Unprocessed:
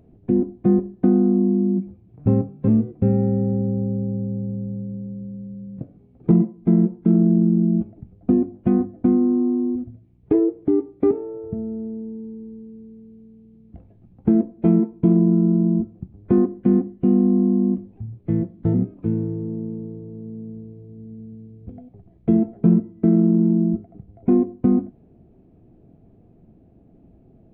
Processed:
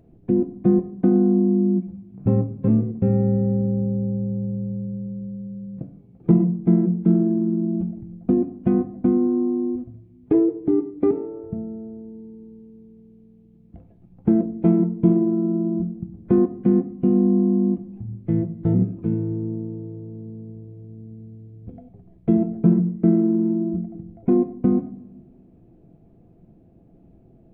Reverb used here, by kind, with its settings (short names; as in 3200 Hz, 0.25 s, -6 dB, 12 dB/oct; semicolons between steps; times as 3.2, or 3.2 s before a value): shoebox room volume 2600 m³, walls furnished, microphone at 0.76 m; gain -1 dB